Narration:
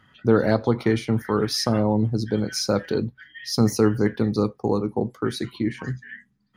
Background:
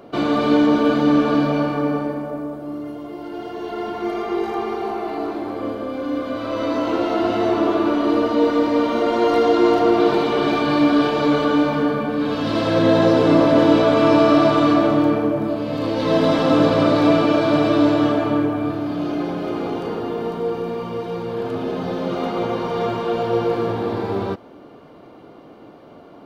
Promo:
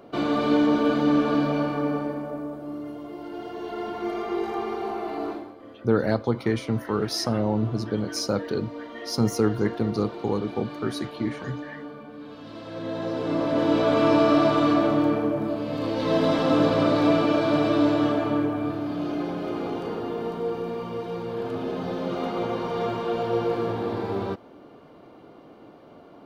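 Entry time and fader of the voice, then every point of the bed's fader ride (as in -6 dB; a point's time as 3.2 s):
5.60 s, -3.5 dB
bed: 5.32 s -5 dB
5.57 s -19.5 dB
12.63 s -19.5 dB
13.94 s -5 dB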